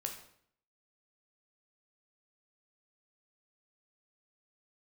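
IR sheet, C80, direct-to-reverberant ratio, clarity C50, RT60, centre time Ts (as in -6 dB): 10.5 dB, 2.5 dB, 7.5 dB, 0.65 s, 20 ms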